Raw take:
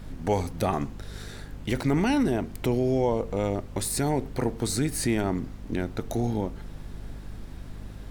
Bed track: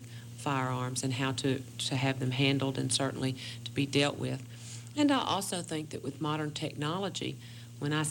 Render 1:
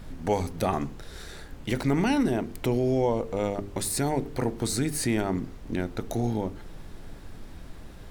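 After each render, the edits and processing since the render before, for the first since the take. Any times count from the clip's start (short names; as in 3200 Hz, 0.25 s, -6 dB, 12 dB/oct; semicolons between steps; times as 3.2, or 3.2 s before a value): de-hum 50 Hz, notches 9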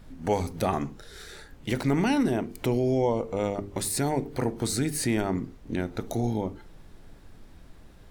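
noise print and reduce 7 dB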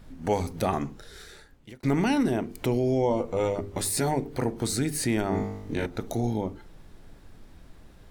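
1.07–1.83 fade out linear; 3.09–4.14 doubler 12 ms -4 dB; 5.29–5.86 flutter echo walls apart 3.4 m, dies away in 0.74 s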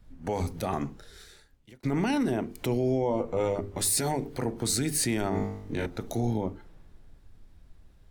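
limiter -19 dBFS, peak gain reduction 7 dB; three-band expander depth 40%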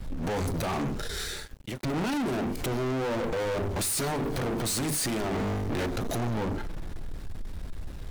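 limiter -26.5 dBFS, peak gain reduction 11.5 dB; sample leveller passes 5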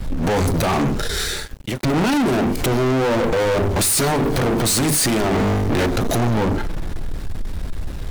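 gain +11 dB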